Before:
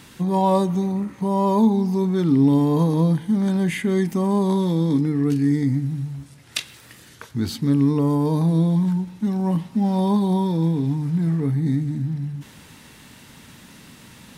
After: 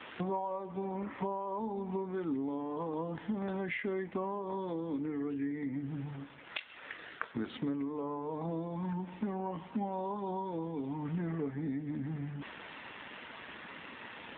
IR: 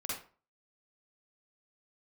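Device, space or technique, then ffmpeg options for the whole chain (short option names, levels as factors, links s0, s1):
voicemail: -af "highpass=450,lowpass=2900,acompressor=threshold=0.01:ratio=8,volume=2.37" -ar 8000 -c:a libopencore_amrnb -b:a 7400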